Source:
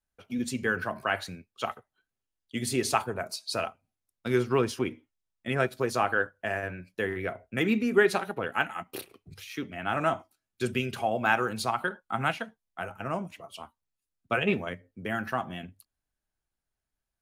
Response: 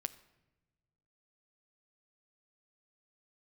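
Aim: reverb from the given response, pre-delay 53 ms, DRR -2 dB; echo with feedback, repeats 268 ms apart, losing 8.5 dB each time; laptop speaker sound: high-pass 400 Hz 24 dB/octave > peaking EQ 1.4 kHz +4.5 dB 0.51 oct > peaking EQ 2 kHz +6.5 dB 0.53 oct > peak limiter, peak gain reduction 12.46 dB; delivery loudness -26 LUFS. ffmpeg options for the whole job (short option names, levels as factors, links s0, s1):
-filter_complex "[0:a]aecho=1:1:268|536|804|1072:0.376|0.143|0.0543|0.0206,asplit=2[s0][s1];[1:a]atrim=start_sample=2205,adelay=53[s2];[s1][s2]afir=irnorm=-1:irlink=0,volume=1.5[s3];[s0][s3]amix=inputs=2:normalize=0,highpass=f=400:w=0.5412,highpass=f=400:w=1.3066,equalizer=f=1400:t=o:w=0.51:g=4.5,equalizer=f=2000:t=o:w=0.53:g=6.5,alimiter=limit=0.2:level=0:latency=1"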